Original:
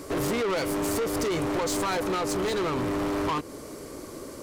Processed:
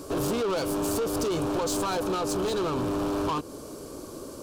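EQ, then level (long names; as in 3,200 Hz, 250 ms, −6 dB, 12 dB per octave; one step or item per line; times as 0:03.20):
parametric band 2,000 Hz −14.5 dB 0.38 octaves
0.0 dB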